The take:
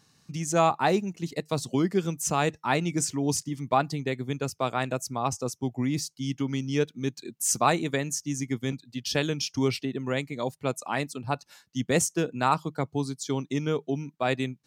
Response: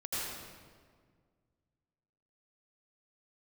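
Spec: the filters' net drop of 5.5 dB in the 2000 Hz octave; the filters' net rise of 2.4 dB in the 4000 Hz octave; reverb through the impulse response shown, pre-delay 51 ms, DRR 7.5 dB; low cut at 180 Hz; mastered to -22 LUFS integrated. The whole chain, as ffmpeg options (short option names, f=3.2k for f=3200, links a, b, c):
-filter_complex "[0:a]highpass=180,equalizer=f=2k:t=o:g=-9,equalizer=f=4k:t=o:g=5.5,asplit=2[a][b];[1:a]atrim=start_sample=2205,adelay=51[c];[b][c]afir=irnorm=-1:irlink=0,volume=-12dB[d];[a][d]amix=inputs=2:normalize=0,volume=6.5dB"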